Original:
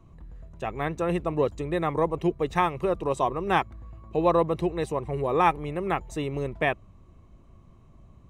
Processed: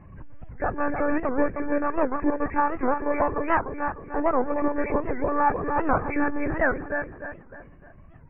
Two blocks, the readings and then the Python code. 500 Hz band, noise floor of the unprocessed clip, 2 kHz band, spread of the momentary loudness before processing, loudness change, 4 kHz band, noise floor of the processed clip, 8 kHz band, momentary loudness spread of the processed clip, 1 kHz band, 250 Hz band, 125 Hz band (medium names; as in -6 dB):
0.0 dB, -53 dBFS, +4.5 dB, 9 LU, +1.0 dB, under -20 dB, -48 dBFS, under -30 dB, 7 LU, +1.5 dB, +3.5 dB, -5.5 dB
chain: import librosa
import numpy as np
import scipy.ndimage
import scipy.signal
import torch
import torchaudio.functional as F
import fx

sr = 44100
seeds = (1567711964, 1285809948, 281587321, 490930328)

y = fx.freq_compress(x, sr, knee_hz=1500.0, ratio=4.0)
y = fx.rider(y, sr, range_db=10, speed_s=0.5)
y = fx.echo_feedback(y, sr, ms=301, feedback_pct=38, wet_db=-5.5)
y = fx.lpc_monotone(y, sr, seeds[0], pitch_hz=290.0, order=16)
y = fx.record_warp(y, sr, rpm=78.0, depth_cents=250.0)
y = F.gain(torch.from_numpy(y), 1.5).numpy()